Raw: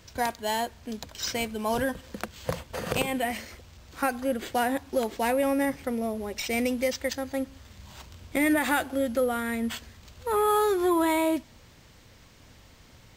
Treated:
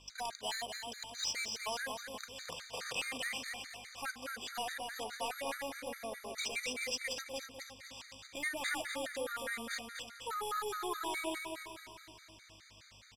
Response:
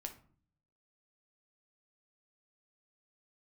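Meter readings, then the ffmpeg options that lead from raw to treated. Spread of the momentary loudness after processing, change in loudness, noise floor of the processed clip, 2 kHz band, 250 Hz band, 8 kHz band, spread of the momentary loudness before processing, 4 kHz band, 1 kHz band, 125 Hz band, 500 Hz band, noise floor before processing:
13 LU, −11.5 dB, −59 dBFS, −7.0 dB, −21.0 dB, −4.5 dB, 15 LU, −2.5 dB, −12.0 dB, −19.0 dB, −16.0 dB, −54 dBFS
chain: -filter_complex "[0:a]asplit=2[link_01][link_02];[link_02]alimiter=limit=-22dB:level=0:latency=1,volume=-2.5dB[link_03];[link_01][link_03]amix=inputs=2:normalize=0,bandpass=frequency=7700:width_type=q:width=0.55:csg=0,asoftclip=type=tanh:threshold=-30dB,aexciter=amount=2.2:drive=3.3:freq=11000,adynamicsmooth=sensitivity=7:basefreq=5500,aeval=exprs='val(0)+0.000562*(sin(2*PI*50*n/s)+sin(2*PI*2*50*n/s)/2+sin(2*PI*3*50*n/s)/3+sin(2*PI*4*50*n/s)/4+sin(2*PI*5*50*n/s)/5)':channel_layout=same,aecho=1:1:249|498|747|996|1245|1494|1743:0.562|0.292|0.152|0.0791|0.0411|0.0214|0.0111,afftfilt=real='re*gt(sin(2*PI*4.8*pts/sr)*(1-2*mod(floor(b*sr/1024/1200),2)),0)':imag='im*gt(sin(2*PI*4.8*pts/sr)*(1-2*mod(floor(b*sr/1024/1200),2)),0)':win_size=1024:overlap=0.75,volume=3dB"

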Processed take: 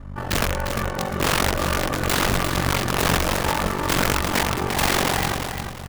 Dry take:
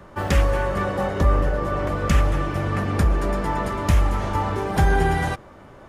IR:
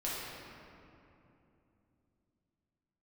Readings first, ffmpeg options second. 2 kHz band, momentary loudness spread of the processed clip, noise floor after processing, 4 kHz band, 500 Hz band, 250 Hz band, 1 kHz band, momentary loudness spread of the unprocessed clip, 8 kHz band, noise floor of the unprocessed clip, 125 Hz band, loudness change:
+5.0 dB, 5 LU, −33 dBFS, +12.0 dB, −1.0 dB, 0.0 dB, +1.0 dB, 4 LU, +12.5 dB, −45 dBFS, −4.0 dB, +0.5 dB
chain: -filter_complex "[0:a]equalizer=frequency=530:width=2.9:gain=-2,bandreject=frequency=60:width_type=h:width=6,bandreject=frequency=120:width_type=h:width=6,bandreject=frequency=180:width_type=h:width=6,bandreject=frequency=240:width_type=h:width=6,bandreject=frequency=300:width_type=h:width=6,bandreject=frequency=360:width_type=h:width=6,bandreject=frequency=420:width_type=h:width=6,bandreject=frequency=480:width_type=h:width=6,bandreject=frequency=540:width_type=h:width=6,bandreject=frequency=600:width_type=h:width=6,dynaudnorm=framelen=360:gausssize=7:maxgain=6.5dB,aeval=exprs='(mod(4.22*val(0)+1,2)-1)/4.22':channel_layout=same,aeval=exprs='val(0)+0.0316*(sin(2*PI*50*n/s)+sin(2*PI*2*50*n/s)/2+sin(2*PI*3*50*n/s)/3+sin(2*PI*4*50*n/s)/4+sin(2*PI*5*50*n/s)/5)':channel_layout=same,aeval=exprs='val(0)*sin(2*PI*23*n/s)':channel_layout=same,aecho=1:1:350|700|1050|1400:0.447|0.143|0.0457|0.0146,asplit=2[link_01][link_02];[1:a]atrim=start_sample=2205[link_03];[link_02][link_03]afir=irnorm=-1:irlink=0,volume=-25dB[link_04];[link_01][link_04]amix=inputs=2:normalize=0,volume=-1dB"

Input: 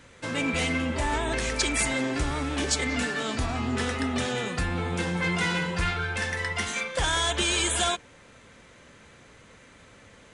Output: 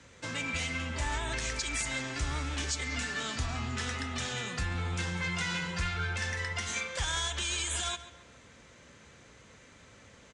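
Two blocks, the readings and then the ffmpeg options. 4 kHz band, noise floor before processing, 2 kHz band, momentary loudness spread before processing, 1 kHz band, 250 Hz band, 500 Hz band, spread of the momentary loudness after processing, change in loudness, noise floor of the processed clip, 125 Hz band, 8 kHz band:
−5.5 dB, −53 dBFS, −5.5 dB, 5 LU, −8.0 dB, −11.0 dB, −11.5 dB, 3 LU, −6.0 dB, −56 dBFS, −4.0 dB, −5.0 dB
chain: -filter_complex "[0:a]lowpass=frequency=6900:width_type=q:width=1.7,acrossover=split=150|910[link_01][link_02][link_03];[link_02]acompressor=threshold=-39dB:ratio=6[link_04];[link_01][link_04][link_03]amix=inputs=3:normalize=0,highpass=48,alimiter=limit=-18.5dB:level=0:latency=1:release=131,lowshelf=frequency=100:gain=5,asplit=2[link_05][link_06];[link_06]adelay=138,lowpass=frequency=4300:poles=1,volume=-14dB,asplit=2[link_07][link_08];[link_08]adelay=138,lowpass=frequency=4300:poles=1,volume=0.39,asplit=2[link_09][link_10];[link_10]adelay=138,lowpass=frequency=4300:poles=1,volume=0.39,asplit=2[link_11][link_12];[link_12]adelay=138,lowpass=frequency=4300:poles=1,volume=0.39[link_13];[link_07][link_09][link_11][link_13]amix=inputs=4:normalize=0[link_14];[link_05][link_14]amix=inputs=2:normalize=0,volume=-4.5dB"

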